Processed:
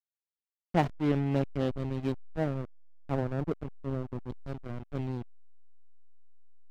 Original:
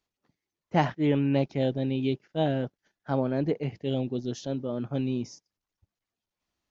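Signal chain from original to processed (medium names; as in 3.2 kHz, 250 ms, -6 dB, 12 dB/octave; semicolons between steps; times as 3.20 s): 2.12–4.30 s: low-pass 1.6 kHz 24 dB/octave; hysteresis with a dead band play -21 dBFS; trim -1.5 dB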